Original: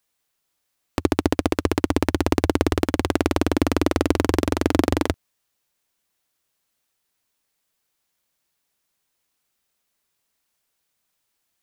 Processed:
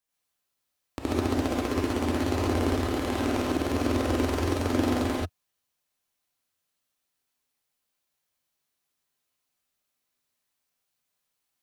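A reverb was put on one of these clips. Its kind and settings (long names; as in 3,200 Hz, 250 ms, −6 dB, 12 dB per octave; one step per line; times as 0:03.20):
reverb whose tail is shaped and stops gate 160 ms rising, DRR −6.5 dB
level −12.5 dB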